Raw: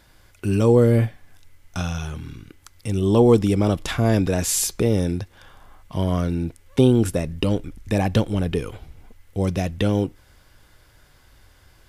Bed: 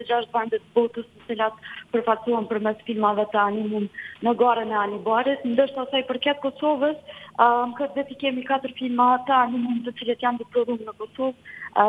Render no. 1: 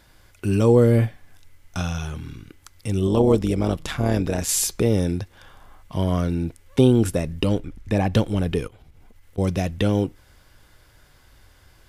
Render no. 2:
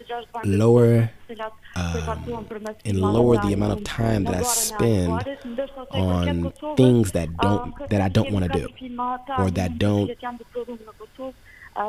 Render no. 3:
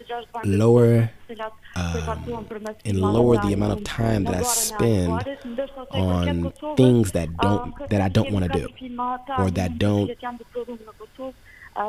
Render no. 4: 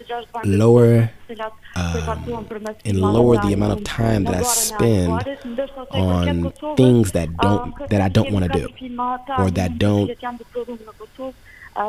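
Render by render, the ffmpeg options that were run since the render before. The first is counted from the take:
-filter_complex "[0:a]asettb=1/sr,asplit=3[a][b][c];[a]atrim=end=3.074[d];[b]atrim=start=3.07:end=4.49,asetpts=PTS-STARTPTS,afade=t=in:d=0.004:c=qsin,afade=t=out:st=1.416:d=0.004:c=qsin,tremolo=f=150:d=0.621[e];[c]atrim=start=4.486[f];[d][e]acrossfade=d=0.004:c1=hsin:c2=qsin[g];[g][f]acrossfade=d=0.004:c1=qsin:c2=hsin,asettb=1/sr,asplit=3[h][i][j];[h]atrim=end=7.594[k];[i]atrim=start=7.59:end=8.14,asetpts=PTS-STARTPTS,afade=t=in:d=0.004:c=qsin,afade=t=out:st=0.546:d=0.004:c=qsin,highshelf=f=5k:g=-8.5[l];[j]atrim=start=8.136[m];[k][l]acrossfade=d=0.004:c1=hsin:c2=qsin[n];[n][m]acrossfade=d=0.004:c1=qsin:c2=hsin,asettb=1/sr,asplit=3[o][p][q];[o]atrim=end=8.674[r];[p]atrim=start=8.67:end=9.38,asetpts=PTS-STARTPTS,afade=t=in:d=0.004:c=qsin,afade=t=out:st=0.706:d=0.004:c=qsin,acompressor=threshold=-44dB:ratio=16:attack=3.2:release=140:knee=1:detection=peak[s];[q]atrim=start=9.376[t];[r][s]acrossfade=d=0.004:c1=hsin:c2=qsin[u];[u][t]acrossfade=d=0.004:c1=qsin:c2=hsin"
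-filter_complex "[1:a]volume=-8.5dB[a];[0:a][a]amix=inputs=2:normalize=0"
-af anull
-af "volume=3.5dB,alimiter=limit=-2dB:level=0:latency=1"

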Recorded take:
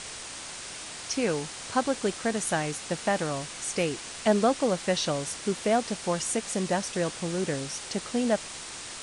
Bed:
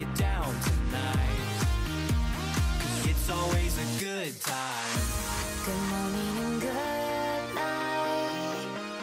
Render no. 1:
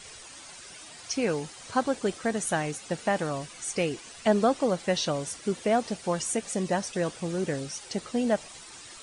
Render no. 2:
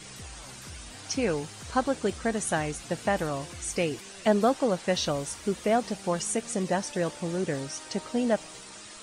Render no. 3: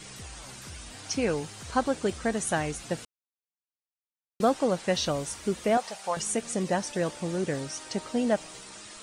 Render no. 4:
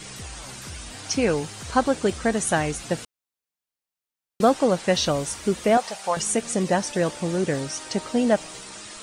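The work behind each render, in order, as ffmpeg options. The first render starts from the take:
-af "afftdn=nr=11:nf=-40"
-filter_complex "[1:a]volume=-18dB[a];[0:a][a]amix=inputs=2:normalize=0"
-filter_complex "[0:a]asettb=1/sr,asplit=3[a][b][c];[a]atrim=end=5.774[d];[b]atrim=start=5.77:end=6.17,asetpts=PTS-STARTPTS,afade=t=in:d=0.004:c=qsin,afade=t=out:st=0.396:d=0.004:c=qsin,lowshelf=f=460:t=q:w=1.5:g=-14[e];[c]atrim=start=6.166[f];[d][e]acrossfade=d=0.004:c1=hsin:c2=qsin[g];[g][f]acrossfade=d=0.004:c1=qsin:c2=hsin,asplit=3[h][i][j];[h]atrim=end=3.05,asetpts=PTS-STARTPTS,afade=t=out:st=3.046:d=0.004:c=hsin[k];[i]atrim=start=3.05:end=4.4,asetpts=PTS-STARTPTS,volume=0[l];[j]atrim=start=4.4,asetpts=PTS-STARTPTS,afade=t=in:d=0.004:c=hsin[m];[k][l][m]concat=n=3:v=0:a=1"
-af "volume=5.5dB"

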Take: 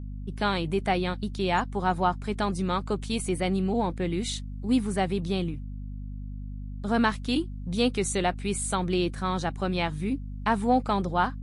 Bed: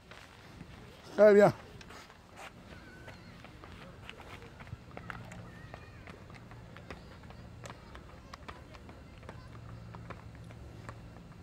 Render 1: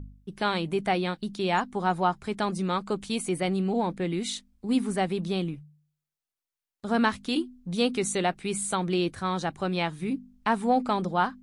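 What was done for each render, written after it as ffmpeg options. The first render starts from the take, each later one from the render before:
-af "bandreject=f=50:t=h:w=4,bandreject=f=100:t=h:w=4,bandreject=f=150:t=h:w=4,bandreject=f=200:t=h:w=4,bandreject=f=250:t=h:w=4"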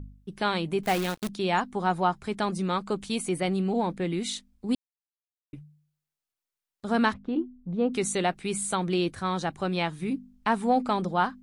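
-filter_complex "[0:a]asettb=1/sr,asplit=3[a][b][c];[a]atrim=end=0.834[d];[b]atrim=start=0.83:end=1.29,asetpts=PTS-STARTPTS,afade=t=in:d=0.004:c=qsin,afade=t=out:st=0.456:d=0.004:c=qsin,acrusher=bits=6:dc=4:mix=0:aa=0.000001[e];[c]atrim=start=1.286[f];[d][e]acrossfade=d=0.004:c1=hsin:c2=qsin[g];[g][f]acrossfade=d=0.004:c1=qsin:c2=hsin,asplit=3[h][i][j];[h]afade=t=out:st=7.12:d=0.02[k];[i]lowpass=1k,afade=t=in:st=7.12:d=0.02,afade=t=out:st=7.92:d=0.02[l];[j]afade=t=in:st=7.92:d=0.02[m];[k][l][m]amix=inputs=3:normalize=0,asplit=3[n][o][p];[n]atrim=end=4.75,asetpts=PTS-STARTPTS,afade=t=out:st=4.746:d=0.004:c=hsin[q];[o]atrim=start=4.75:end=5.53,asetpts=PTS-STARTPTS,volume=0[r];[p]atrim=start=5.53,asetpts=PTS-STARTPTS,afade=t=in:d=0.004:c=hsin[s];[q][r][s]concat=n=3:v=0:a=1"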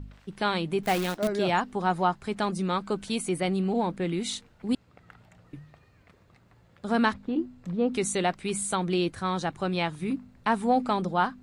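-filter_complex "[1:a]volume=-9dB[a];[0:a][a]amix=inputs=2:normalize=0"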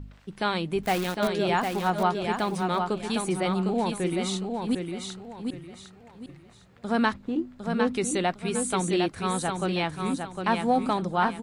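-af "aecho=1:1:756|1512|2268|3024:0.562|0.169|0.0506|0.0152"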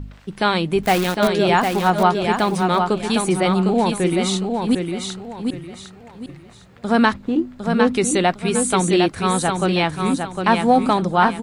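-af "volume=8.5dB,alimiter=limit=-3dB:level=0:latency=1"

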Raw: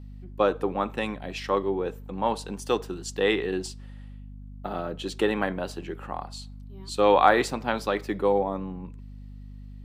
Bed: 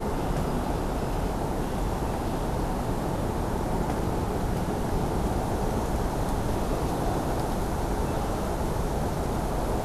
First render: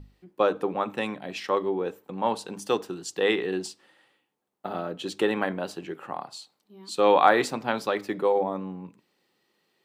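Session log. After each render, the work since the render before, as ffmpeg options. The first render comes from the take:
-af "bandreject=f=50:t=h:w=6,bandreject=f=100:t=h:w=6,bandreject=f=150:t=h:w=6,bandreject=f=200:t=h:w=6,bandreject=f=250:t=h:w=6,bandreject=f=300:t=h:w=6"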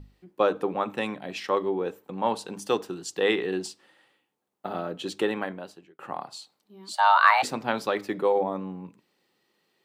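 -filter_complex "[0:a]asplit=3[a][b][c];[a]afade=t=out:st=6.92:d=0.02[d];[b]afreqshift=400,afade=t=in:st=6.92:d=0.02,afade=t=out:st=7.42:d=0.02[e];[c]afade=t=in:st=7.42:d=0.02[f];[d][e][f]amix=inputs=3:normalize=0,asplit=2[g][h];[g]atrim=end=5.99,asetpts=PTS-STARTPTS,afade=t=out:st=5.09:d=0.9[i];[h]atrim=start=5.99,asetpts=PTS-STARTPTS,afade=t=in:d=0.004:c=hsin[j];[i][j]concat=n=2:v=0:a=1"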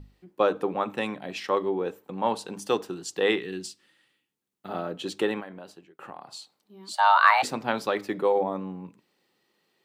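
-filter_complex "[0:a]asettb=1/sr,asplit=3[a][b][c];[a]atrim=end=3.384[d];[b]atrim=start=3.38:end=4.69,asetpts=PTS-STARTPTS,afade=t=in:d=0.004:c=qsin,afade=t=out:st=1.306:d=0.004:c=qsin,equalizer=f=710:t=o:w=1.8:g=-14[e];[c]atrim=start=4.686[f];[d][e]acrossfade=d=0.004:c1=hsin:c2=qsin[g];[g][f]acrossfade=d=0.004:c1=qsin:c2=hsin,asettb=1/sr,asplit=3[h][i][j];[h]atrim=end=5.404[k];[i]atrim=start=5.4:end=6.29,asetpts=PTS-STARTPTS,afade=t=in:d=0.004:c=qsin,afade=t=out:st=0.886:d=0.004:c=qsin,acompressor=threshold=-38dB:ratio=3:attack=3.2:release=140:knee=1:detection=peak[l];[j]atrim=start=6.286[m];[k][l]acrossfade=d=0.004:c1=hsin:c2=qsin[n];[n][m]acrossfade=d=0.004:c1=qsin:c2=hsin"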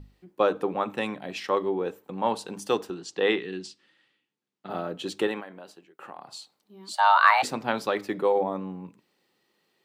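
-filter_complex "[0:a]asettb=1/sr,asplit=3[a][b][c];[a]atrim=end=2.904[d];[b]atrim=start=2.9:end=4.7,asetpts=PTS-STARTPTS,afade=t=in:d=0.004:c=qsin,afade=t=out:st=1.796:d=0.004:c=qsin,highpass=120,lowpass=5.3k[e];[c]atrim=start=4.696[f];[d][e]acrossfade=d=0.004:c1=hsin:c2=qsin[g];[g][f]acrossfade=d=0.004:c1=qsin:c2=hsin,asettb=1/sr,asplit=3[h][i][j];[h]atrim=end=5.274[k];[i]atrim=start=5.27:end=6.18,asetpts=PTS-STARTPTS,afade=t=in:d=0.004:c=qsin,afade=t=out:st=0.906:d=0.004:c=qsin,highpass=f=260:p=1[l];[j]atrim=start=6.176[m];[k][l]acrossfade=d=0.004:c1=hsin:c2=qsin[n];[n][m]acrossfade=d=0.004:c1=qsin:c2=hsin"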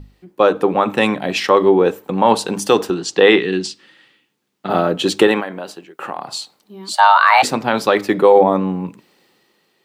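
-af "dynaudnorm=f=150:g=9:m=7.5dB,alimiter=level_in=8.5dB:limit=-1dB:release=50:level=0:latency=1"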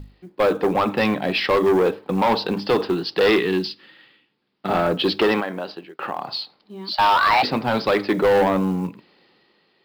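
-af "aresample=11025,asoftclip=type=tanh:threshold=-13dB,aresample=44100,acrusher=bits=8:mode=log:mix=0:aa=0.000001"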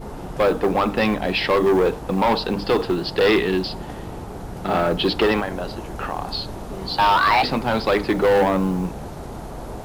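-filter_complex "[1:a]volume=-5.5dB[a];[0:a][a]amix=inputs=2:normalize=0"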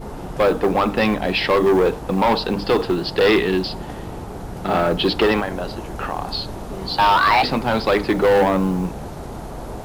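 -af "volume=1.5dB"

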